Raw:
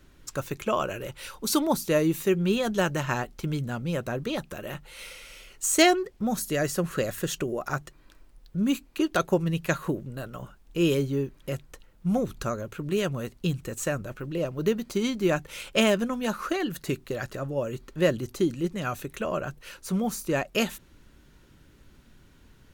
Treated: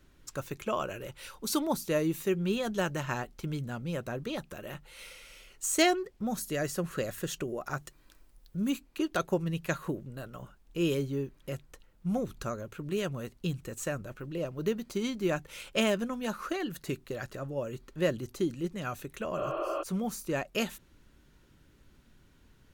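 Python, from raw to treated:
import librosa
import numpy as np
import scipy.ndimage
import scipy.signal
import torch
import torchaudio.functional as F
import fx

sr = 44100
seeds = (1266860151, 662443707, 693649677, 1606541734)

y = fx.high_shelf(x, sr, hz=fx.line((7.78, 4000.0), (8.69, 7700.0)), db=9.0, at=(7.78, 8.69), fade=0.02)
y = fx.spec_repair(y, sr, seeds[0], start_s=19.41, length_s=0.39, low_hz=290.0, high_hz=4300.0, source='before')
y = F.gain(torch.from_numpy(y), -5.5).numpy()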